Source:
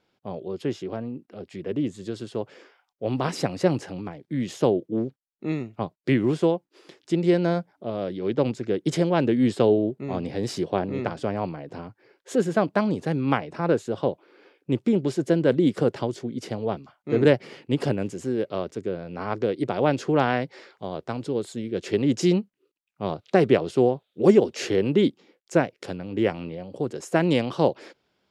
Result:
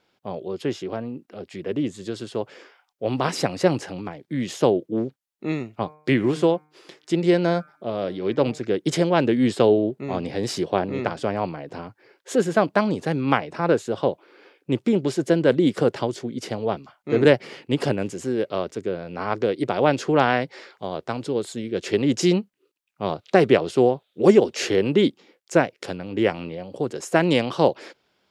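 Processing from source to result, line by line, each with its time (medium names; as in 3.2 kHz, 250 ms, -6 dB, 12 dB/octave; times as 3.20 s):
5.77–8.59 s: de-hum 152.2 Hz, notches 16
whole clip: bass shelf 420 Hz -5.5 dB; trim +5 dB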